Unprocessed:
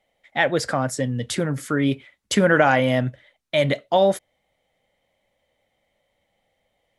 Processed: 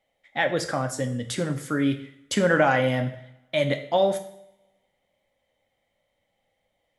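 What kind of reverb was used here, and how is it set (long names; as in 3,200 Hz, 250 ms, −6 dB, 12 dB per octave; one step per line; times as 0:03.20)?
coupled-rooms reverb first 0.63 s, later 1.6 s, from −22 dB, DRR 6.5 dB
level −4.5 dB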